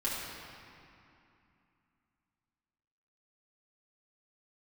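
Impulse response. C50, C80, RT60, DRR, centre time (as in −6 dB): −1.5 dB, 0.5 dB, 2.7 s, −8.5 dB, 139 ms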